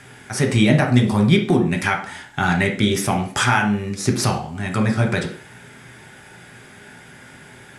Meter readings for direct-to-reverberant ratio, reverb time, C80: 2.0 dB, 0.50 s, 14.5 dB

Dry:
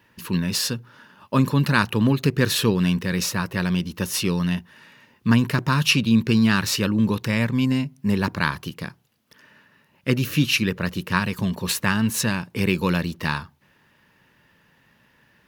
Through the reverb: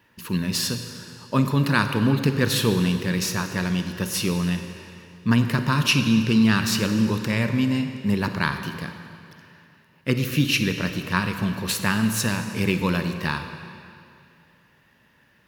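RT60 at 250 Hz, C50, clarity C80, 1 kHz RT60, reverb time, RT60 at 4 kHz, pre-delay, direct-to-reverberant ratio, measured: 2.5 s, 7.5 dB, 8.0 dB, 2.5 s, 2.5 s, 2.3 s, 36 ms, 7.0 dB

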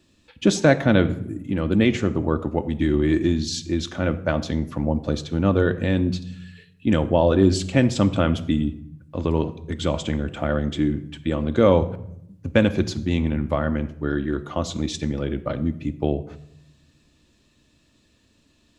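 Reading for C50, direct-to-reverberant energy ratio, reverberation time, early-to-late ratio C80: 15.5 dB, 8.0 dB, 0.75 s, 17.5 dB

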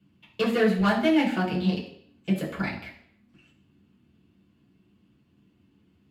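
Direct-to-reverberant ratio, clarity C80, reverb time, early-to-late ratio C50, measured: -6.0 dB, 11.5 dB, 0.60 s, 8.0 dB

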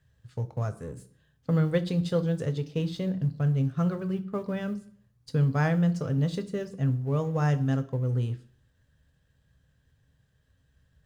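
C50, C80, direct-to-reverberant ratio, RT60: 17.0 dB, 20.5 dB, 8.5 dB, 0.55 s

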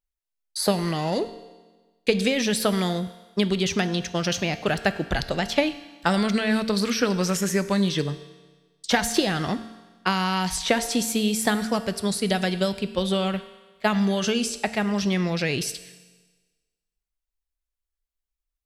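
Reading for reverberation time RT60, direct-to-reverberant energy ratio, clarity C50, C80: 1.3 s, 11.0 dB, 13.5 dB, 14.5 dB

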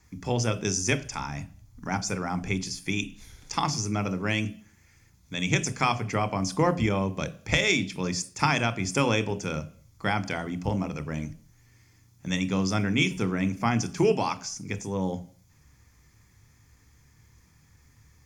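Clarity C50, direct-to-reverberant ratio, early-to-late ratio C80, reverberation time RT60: 18.5 dB, 12.0 dB, 22.0 dB, 0.50 s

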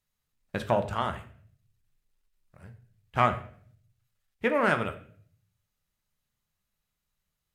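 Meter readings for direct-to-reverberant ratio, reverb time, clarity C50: 7.0 dB, 0.55 s, 12.5 dB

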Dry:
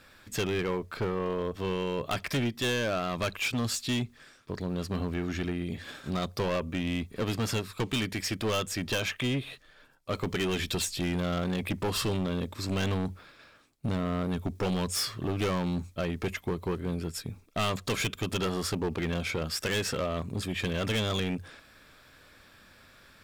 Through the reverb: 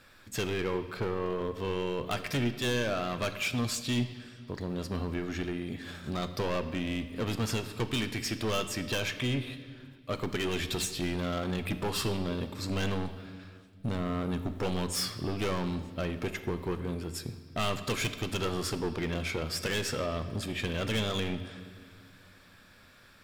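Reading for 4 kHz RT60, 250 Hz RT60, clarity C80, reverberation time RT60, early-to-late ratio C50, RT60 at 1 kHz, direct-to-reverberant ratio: 1.9 s, 2.5 s, 12.5 dB, 1.8 s, 11.0 dB, 1.7 s, 8.5 dB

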